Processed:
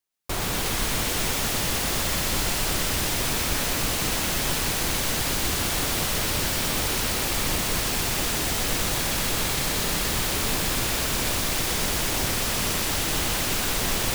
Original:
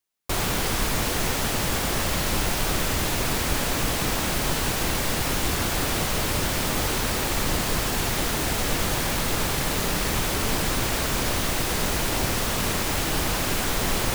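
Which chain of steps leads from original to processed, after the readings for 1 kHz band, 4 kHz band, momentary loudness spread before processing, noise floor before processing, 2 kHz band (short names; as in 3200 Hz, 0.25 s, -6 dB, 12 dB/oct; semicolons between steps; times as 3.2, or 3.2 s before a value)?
-2.0 dB, +1.5 dB, 0 LU, -26 dBFS, -0.5 dB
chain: thin delay 0.123 s, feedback 85%, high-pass 2300 Hz, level -3 dB; gain -2.5 dB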